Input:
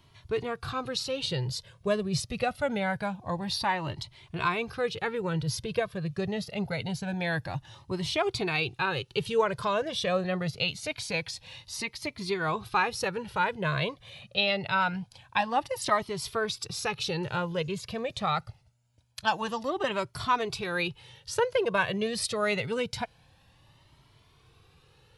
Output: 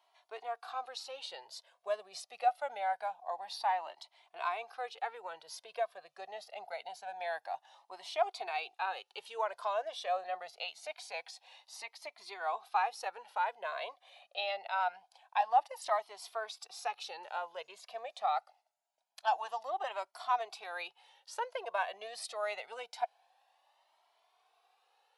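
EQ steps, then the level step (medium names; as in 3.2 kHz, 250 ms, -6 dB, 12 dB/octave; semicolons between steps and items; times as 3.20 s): ladder high-pass 680 Hz, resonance 75%; 0.0 dB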